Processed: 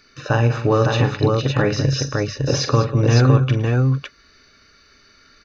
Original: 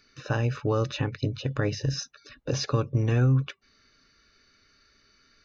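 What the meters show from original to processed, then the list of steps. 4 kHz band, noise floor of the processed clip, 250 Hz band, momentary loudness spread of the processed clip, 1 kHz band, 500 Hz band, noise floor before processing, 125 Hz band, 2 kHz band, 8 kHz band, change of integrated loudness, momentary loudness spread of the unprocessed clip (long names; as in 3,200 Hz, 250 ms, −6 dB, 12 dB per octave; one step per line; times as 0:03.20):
+9.5 dB, −54 dBFS, +10.0 dB, 7 LU, +12.5 dB, +11.5 dB, −64 dBFS, +9.5 dB, +11.0 dB, can't be measured, +9.0 dB, 11 LU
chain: parametric band 830 Hz +3.5 dB 1.9 octaves
on a send: multi-tap delay 43/112/197/558 ms −8.5/−17/−13/−3 dB
on the sum: level +7 dB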